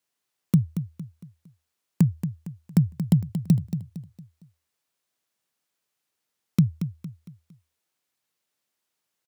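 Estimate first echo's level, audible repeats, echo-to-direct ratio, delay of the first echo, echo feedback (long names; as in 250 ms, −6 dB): −10.0 dB, 4, −9.5 dB, 229 ms, 39%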